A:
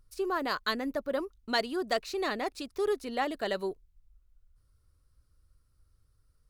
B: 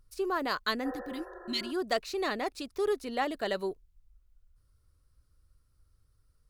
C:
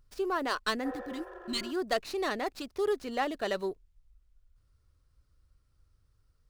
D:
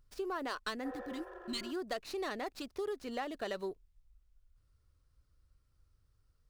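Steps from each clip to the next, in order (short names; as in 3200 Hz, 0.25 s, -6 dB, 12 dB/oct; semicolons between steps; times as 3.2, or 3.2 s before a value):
spectral repair 0.88–1.69, 350–1900 Hz both
running maximum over 3 samples
compressor 4:1, threshold -32 dBFS, peak gain reduction 7.5 dB; gain -3 dB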